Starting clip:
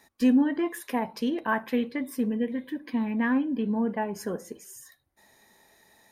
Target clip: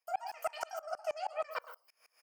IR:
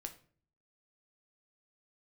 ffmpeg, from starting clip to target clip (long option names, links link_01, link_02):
-filter_complex "[0:a]highpass=200,asplit=2[link_01][link_02];[link_02]adelay=320.7,volume=-8dB,highshelf=frequency=4000:gain=-7.22[link_03];[link_01][link_03]amix=inputs=2:normalize=0,acompressor=threshold=-28dB:ratio=6,asetrate=121275,aresample=44100,equalizer=frequency=4000:width=5.3:gain=-8[link_04];[1:a]atrim=start_sample=2205,afade=type=out:start_time=0.26:duration=0.01,atrim=end_sample=11907,asetrate=70560,aresample=44100[link_05];[link_04][link_05]afir=irnorm=-1:irlink=0,aeval=exprs='val(0)*pow(10,-28*if(lt(mod(-6.3*n/s,1),2*abs(-6.3)/1000),1-mod(-6.3*n/s,1)/(2*abs(-6.3)/1000),(mod(-6.3*n/s,1)-2*abs(-6.3)/1000)/(1-2*abs(-6.3)/1000))/20)':channel_layout=same,volume=8dB"